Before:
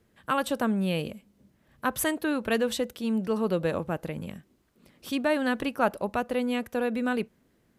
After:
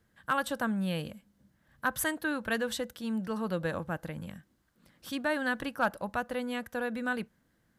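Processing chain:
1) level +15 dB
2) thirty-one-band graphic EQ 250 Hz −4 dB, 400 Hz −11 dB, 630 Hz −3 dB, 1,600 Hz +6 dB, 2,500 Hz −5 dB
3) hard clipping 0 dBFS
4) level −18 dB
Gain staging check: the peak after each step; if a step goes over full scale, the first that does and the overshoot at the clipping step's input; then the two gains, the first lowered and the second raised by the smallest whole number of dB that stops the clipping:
+4.0, +3.5, 0.0, −18.0 dBFS
step 1, 3.5 dB
step 1 +11 dB, step 4 −14 dB

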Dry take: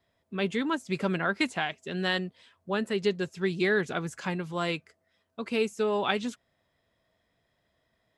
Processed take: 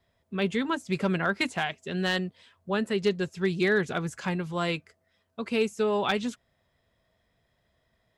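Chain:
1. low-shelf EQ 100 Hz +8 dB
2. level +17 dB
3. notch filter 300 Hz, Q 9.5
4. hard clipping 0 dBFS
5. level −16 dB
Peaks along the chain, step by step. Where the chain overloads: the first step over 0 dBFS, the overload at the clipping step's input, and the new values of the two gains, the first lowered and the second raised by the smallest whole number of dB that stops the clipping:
−10.0, +7.0, +7.0, 0.0, −16.0 dBFS
step 2, 7.0 dB
step 2 +10 dB, step 5 −9 dB

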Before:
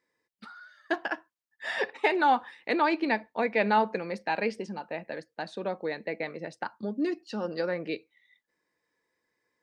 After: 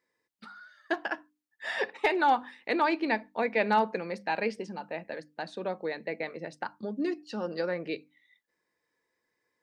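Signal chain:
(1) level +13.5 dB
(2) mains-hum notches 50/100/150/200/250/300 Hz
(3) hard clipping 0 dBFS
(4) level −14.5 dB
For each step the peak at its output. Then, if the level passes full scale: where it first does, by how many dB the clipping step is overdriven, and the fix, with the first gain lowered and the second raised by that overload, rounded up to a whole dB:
+3.5, +3.5, 0.0, −14.5 dBFS
step 1, 3.5 dB
step 1 +9.5 dB, step 4 −10.5 dB

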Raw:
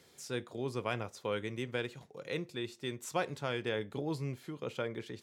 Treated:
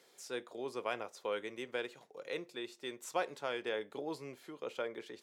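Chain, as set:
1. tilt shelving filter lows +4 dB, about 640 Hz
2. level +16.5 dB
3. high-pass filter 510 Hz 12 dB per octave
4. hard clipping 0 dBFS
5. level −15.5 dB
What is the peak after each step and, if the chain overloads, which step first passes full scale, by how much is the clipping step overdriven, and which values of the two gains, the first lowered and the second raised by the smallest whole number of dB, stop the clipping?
−19.0, −2.5, −6.0, −6.0, −21.5 dBFS
no step passes full scale

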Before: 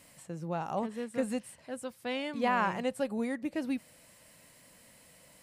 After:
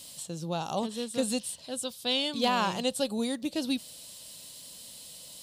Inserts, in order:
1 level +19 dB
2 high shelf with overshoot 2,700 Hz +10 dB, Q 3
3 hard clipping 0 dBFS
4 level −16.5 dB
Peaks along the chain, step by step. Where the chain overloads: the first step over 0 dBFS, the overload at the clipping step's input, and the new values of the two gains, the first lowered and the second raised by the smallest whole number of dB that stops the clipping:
+2.5, +5.0, 0.0, −16.5 dBFS
step 1, 5.0 dB
step 1 +14 dB, step 4 −11.5 dB

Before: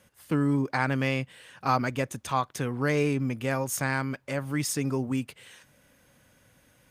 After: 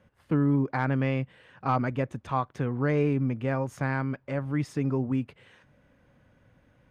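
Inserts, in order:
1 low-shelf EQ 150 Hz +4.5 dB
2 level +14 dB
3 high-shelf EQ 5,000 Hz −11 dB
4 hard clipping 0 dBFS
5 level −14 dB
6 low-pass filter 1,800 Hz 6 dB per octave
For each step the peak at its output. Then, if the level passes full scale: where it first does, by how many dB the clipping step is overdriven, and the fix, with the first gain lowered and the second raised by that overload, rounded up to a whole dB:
−10.0, +4.0, +3.5, 0.0, −14.0, −14.0 dBFS
step 2, 3.5 dB
step 2 +10 dB, step 5 −10 dB

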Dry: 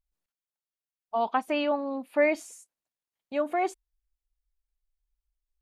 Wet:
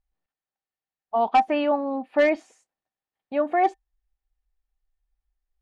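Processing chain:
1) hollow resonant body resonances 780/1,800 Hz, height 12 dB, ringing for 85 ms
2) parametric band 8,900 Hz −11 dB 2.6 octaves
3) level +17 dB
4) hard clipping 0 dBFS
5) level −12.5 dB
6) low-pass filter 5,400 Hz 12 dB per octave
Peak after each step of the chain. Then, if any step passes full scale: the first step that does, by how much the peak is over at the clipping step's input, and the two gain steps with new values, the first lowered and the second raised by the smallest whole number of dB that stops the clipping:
−8.5, −9.5, +7.5, 0.0, −12.5, −12.0 dBFS
step 3, 7.5 dB
step 3 +9 dB, step 5 −4.5 dB

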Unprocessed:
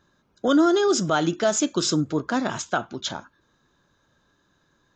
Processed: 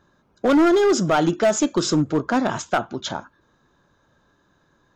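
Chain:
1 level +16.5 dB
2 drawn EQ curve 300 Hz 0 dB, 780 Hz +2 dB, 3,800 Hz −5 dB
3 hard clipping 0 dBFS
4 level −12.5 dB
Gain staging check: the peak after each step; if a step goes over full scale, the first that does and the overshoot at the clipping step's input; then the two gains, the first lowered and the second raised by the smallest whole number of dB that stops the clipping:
+7.0, +7.5, 0.0, −12.5 dBFS
step 1, 7.5 dB
step 1 +8.5 dB, step 4 −4.5 dB

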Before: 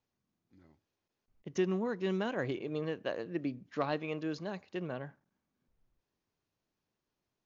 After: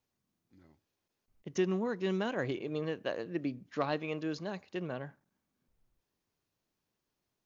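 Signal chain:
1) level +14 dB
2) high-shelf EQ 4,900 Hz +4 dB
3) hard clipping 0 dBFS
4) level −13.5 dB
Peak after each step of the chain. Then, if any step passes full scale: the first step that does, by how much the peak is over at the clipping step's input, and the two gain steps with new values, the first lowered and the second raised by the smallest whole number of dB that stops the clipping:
−5.0, −4.5, −4.5, −18.0 dBFS
no step passes full scale

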